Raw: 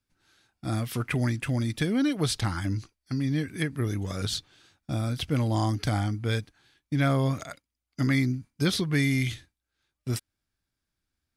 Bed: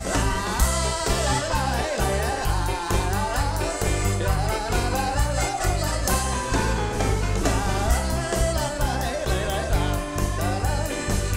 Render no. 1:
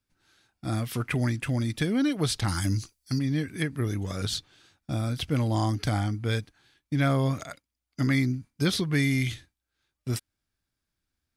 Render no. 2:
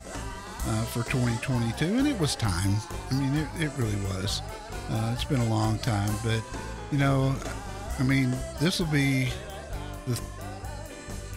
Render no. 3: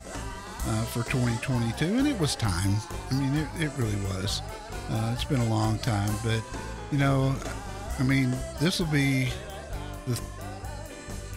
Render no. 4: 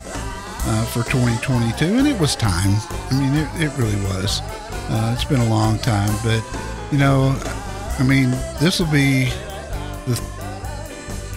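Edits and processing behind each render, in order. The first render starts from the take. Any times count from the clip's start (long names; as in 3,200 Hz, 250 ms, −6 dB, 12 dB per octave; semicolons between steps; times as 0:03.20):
0:02.48–0:03.19: bass and treble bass +3 dB, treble +14 dB
mix in bed −13.5 dB
no processing that can be heard
level +8.5 dB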